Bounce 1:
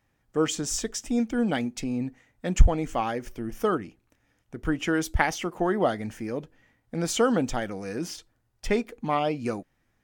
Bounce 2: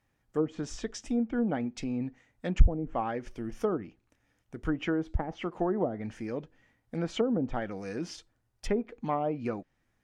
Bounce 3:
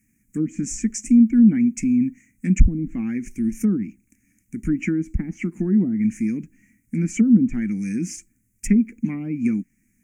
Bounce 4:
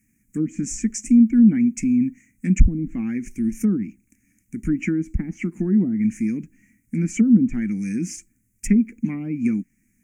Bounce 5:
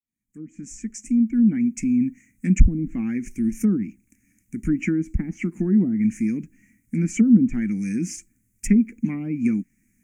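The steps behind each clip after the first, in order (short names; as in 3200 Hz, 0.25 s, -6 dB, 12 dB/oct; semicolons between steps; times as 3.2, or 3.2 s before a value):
treble ducked by the level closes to 460 Hz, closed at -18.5 dBFS; gain -3.5 dB
EQ curve 140 Hz 0 dB, 210 Hz +14 dB, 330 Hz +1 dB, 540 Hz -26 dB, 840 Hz -25 dB, 1200 Hz -19 dB, 2300 Hz +7 dB, 3600 Hz -28 dB, 6700 Hz +13 dB; gain +5.5 dB
nothing audible
opening faded in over 2.29 s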